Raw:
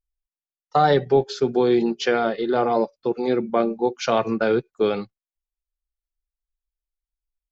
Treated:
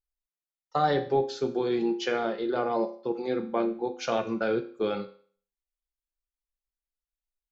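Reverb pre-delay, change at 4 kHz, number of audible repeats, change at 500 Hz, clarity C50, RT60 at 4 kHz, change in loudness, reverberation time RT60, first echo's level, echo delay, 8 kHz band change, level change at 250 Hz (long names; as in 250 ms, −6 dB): 4 ms, −6.5 dB, no echo audible, −7.5 dB, 13.0 dB, 0.45 s, −7.0 dB, 0.45 s, no echo audible, no echo audible, can't be measured, −6.5 dB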